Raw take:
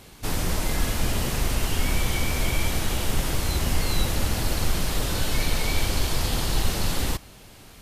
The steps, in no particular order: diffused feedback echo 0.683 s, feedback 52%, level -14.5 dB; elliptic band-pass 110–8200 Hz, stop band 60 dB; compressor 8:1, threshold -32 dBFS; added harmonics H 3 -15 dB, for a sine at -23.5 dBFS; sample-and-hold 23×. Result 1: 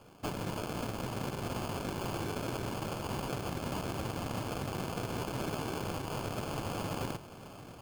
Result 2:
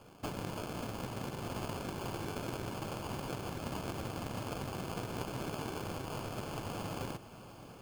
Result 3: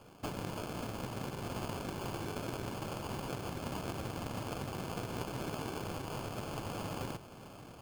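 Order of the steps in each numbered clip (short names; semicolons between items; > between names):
elliptic band-pass > added harmonics > compressor > diffused feedback echo > sample-and-hold; elliptic band-pass > compressor > added harmonics > sample-and-hold > diffused feedback echo; elliptic band-pass > compressor > added harmonics > diffused feedback echo > sample-and-hold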